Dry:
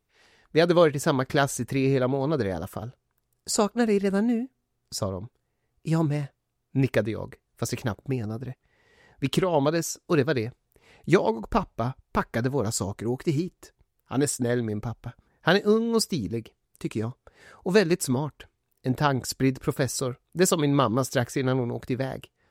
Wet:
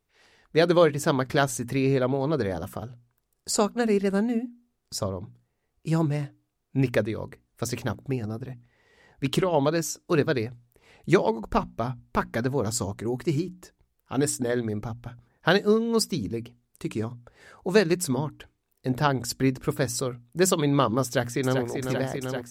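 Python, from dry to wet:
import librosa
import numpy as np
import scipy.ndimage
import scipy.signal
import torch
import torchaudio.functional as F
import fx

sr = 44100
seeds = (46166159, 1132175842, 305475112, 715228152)

y = fx.echo_throw(x, sr, start_s=21.04, length_s=0.59, ms=390, feedback_pct=85, wet_db=-6.0)
y = fx.hum_notches(y, sr, base_hz=60, count=5)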